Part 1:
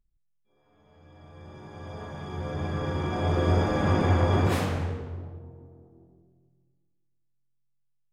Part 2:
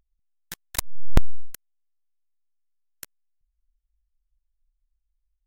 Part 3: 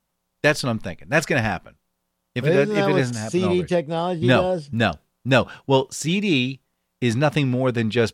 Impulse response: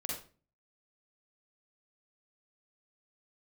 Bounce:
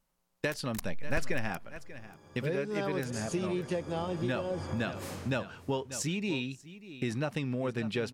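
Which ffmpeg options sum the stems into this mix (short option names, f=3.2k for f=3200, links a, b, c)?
-filter_complex "[0:a]bass=f=250:g=1,treble=f=4k:g=10,adelay=500,volume=-13dB,asplit=2[a][b];[b]volume=-21dB[c];[1:a]asoftclip=type=tanh:threshold=-16.5dB,volume=-10dB,asplit=2[d][e];[e]volume=-17.5dB[f];[2:a]volume=-4dB,asplit=2[g][h];[h]volume=-23.5dB[i];[a][g]amix=inputs=2:normalize=0,equalizer=f=69:t=o:w=0.69:g=-12,acompressor=threshold=-30dB:ratio=5,volume=0dB[j];[c][f][i]amix=inputs=3:normalize=0,aecho=0:1:589:1[k];[d][j][k]amix=inputs=3:normalize=0,equalizer=f=3.5k:w=7.5:g=-4,bandreject=f=720:w=16"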